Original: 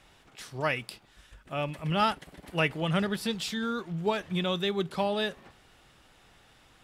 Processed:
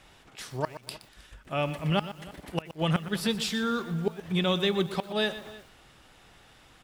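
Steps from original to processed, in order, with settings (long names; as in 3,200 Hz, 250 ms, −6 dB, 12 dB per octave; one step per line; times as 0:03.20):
gate with flip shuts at −18 dBFS, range −26 dB
slap from a distant wall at 54 metres, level −19 dB
feedback echo at a low word length 121 ms, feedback 35%, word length 8 bits, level −13 dB
level +3 dB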